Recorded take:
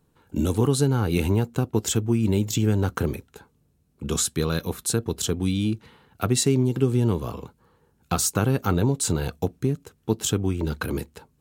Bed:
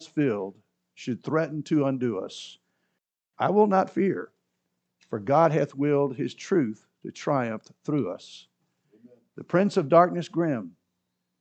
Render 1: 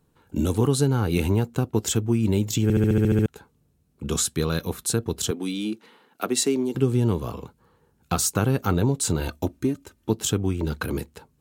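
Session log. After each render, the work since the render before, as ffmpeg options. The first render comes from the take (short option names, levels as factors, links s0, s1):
-filter_complex "[0:a]asettb=1/sr,asplit=3[s0][s1][s2];[s0]atrim=end=5.314[s3];[s1]atrim=start=5.31:end=6.75,asetpts=PTS-STARTPTS,afade=t=in:d=0.004:c=qsin,afade=t=out:st=1.436:d=0.004:c=qsin,highpass=f=230:w=0.5412,highpass=f=230:w=1.3066[s4];[s2]atrim=start=6.746[s5];[s3][s4]acrossfade=d=0.004:c1=hsin:c2=qsin[s6];[s6][s5]acrossfade=d=0.004:c1=qsin:c2=hsin,asettb=1/sr,asplit=3[s7][s8][s9];[s7]atrim=end=9.204[s10];[s8]atrim=start=9.2:end=10.1,asetpts=PTS-STARTPTS,afade=t=in:d=0.004:c=qsin,afade=t=out:st=0.896:d=0.004:c=qsin,aecho=1:1:3.3:0.65,atrim=end_sample=39690[s11];[s9]atrim=start=10.096[s12];[s10][s11]acrossfade=d=0.004:c1=hsin:c2=qsin[s13];[s13][s12]acrossfade=d=0.004:c1=qsin:c2=hsin,asplit=10[s14][s15][s16][s17][s18][s19][s20][s21][s22][s23];[s14]atrim=end=2.702[s24];[s15]atrim=start=2.628:end=2.702[s25];[s16]atrim=start=2.628:end=2.702[s26];[s17]atrim=start=2.628:end=2.702[s27];[s18]atrim=start=2.628:end=2.702[s28];[s19]atrim=start=2.628:end=2.702[s29];[s20]atrim=start=2.628:end=2.702[s30];[s21]atrim=start=2.628:end=2.702[s31];[s22]atrim=start=2.628:end=2.702[s32];[s23]atrim=start=3.258[s33];[s24][s25]acrossfade=d=0.004:c1=hsin:c2=hsin[s34];[s34][s26]acrossfade=d=0.004:c1=hsin:c2=hsin[s35];[s35][s27]acrossfade=d=0.004:c1=hsin:c2=hsin[s36];[s36][s28]acrossfade=d=0.004:c1=hsin:c2=hsin[s37];[s37][s29]acrossfade=d=0.004:c1=hsin:c2=hsin[s38];[s38][s30]acrossfade=d=0.004:c1=hsin:c2=hsin[s39];[s39][s31]acrossfade=d=0.004:c1=hsin:c2=hsin[s40];[s40][s32]acrossfade=d=0.004:c1=hsin:c2=hsin[s41];[s41][s33]acrossfade=d=0.004:c1=hsin:c2=hsin"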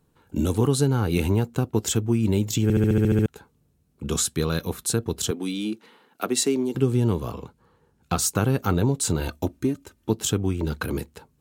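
-filter_complex "[0:a]asettb=1/sr,asplit=3[s0][s1][s2];[s0]atrim=end=7.324[s3];[s1]atrim=start=7.32:end=8.22,asetpts=PTS-STARTPTS,afade=t=in:d=0.004:c=qsin,afade=t=out:st=0.896:d=0.004:c=qsin,highshelf=f=12000:g=-9[s4];[s2]atrim=start=8.216[s5];[s3][s4]acrossfade=d=0.004:c1=hsin:c2=qsin[s6];[s6][s5]acrossfade=d=0.004:c1=qsin:c2=hsin"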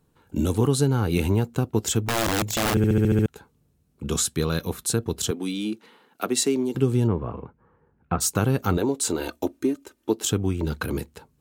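-filter_complex "[0:a]asplit=3[s0][s1][s2];[s0]afade=t=out:st=2.06:d=0.02[s3];[s1]aeval=exprs='(mod(7.94*val(0)+1,2)-1)/7.94':c=same,afade=t=in:st=2.06:d=0.02,afade=t=out:st=2.73:d=0.02[s4];[s2]afade=t=in:st=2.73:d=0.02[s5];[s3][s4][s5]amix=inputs=3:normalize=0,asplit=3[s6][s7][s8];[s6]afade=t=out:st=7.06:d=0.02[s9];[s7]lowpass=f=2100:w=0.5412,lowpass=f=2100:w=1.3066,afade=t=in:st=7.06:d=0.02,afade=t=out:st=8.2:d=0.02[s10];[s8]afade=t=in:st=8.2:d=0.02[s11];[s9][s10][s11]amix=inputs=3:normalize=0,asettb=1/sr,asplit=3[s12][s13][s14];[s12]atrim=end=8.774[s15];[s13]atrim=start=8.77:end=10.32,asetpts=PTS-STARTPTS,afade=t=in:d=0.004:c=qsin,afade=t=out:st=1.546:d=0.004:c=qsin,lowshelf=f=210:t=q:w=1.5:g=-11.5[s16];[s14]atrim=start=10.316[s17];[s15][s16]acrossfade=d=0.004:c1=hsin:c2=qsin[s18];[s18][s17]acrossfade=d=0.004:c1=qsin:c2=hsin"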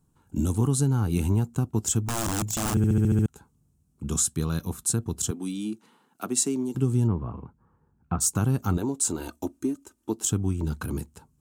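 -af "equalizer=f=500:t=o:w=1:g=-11,equalizer=f=2000:t=o:w=1:g=-10,equalizer=f=4000:t=o:w=1:g=-8,equalizer=f=8000:t=o:w=1:g=6,equalizer=f=16000:t=o:w=1:g=-6"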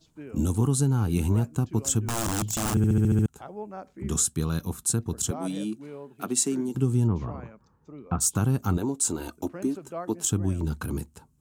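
-filter_complex "[1:a]volume=0.126[s0];[0:a][s0]amix=inputs=2:normalize=0"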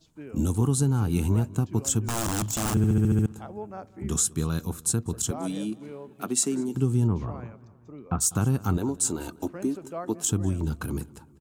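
-filter_complex "[0:a]asplit=2[s0][s1];[s1]adelay=197,lowpass=f=4000:p=1,volume=0.0944,asplit=2[s2][s3];[s3]adelay=197,lowpass=f=4000:p=1,volume=0.54,asplit=2[s4][s5];[s5]adelay=197,lowpass=f=4000:p=1,volume=0.54,asplit=2[s6][s7];[s7]adelay=197,lowpass=f=4000:p=1,volume=0.54[s8];[s0][s2][s4][s6][s8]amix=inputs=5:normalize=0"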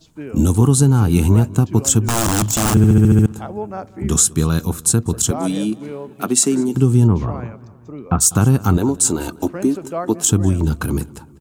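-af "volume=3.35,alimiter=limit=0.794:level=0:latency=1"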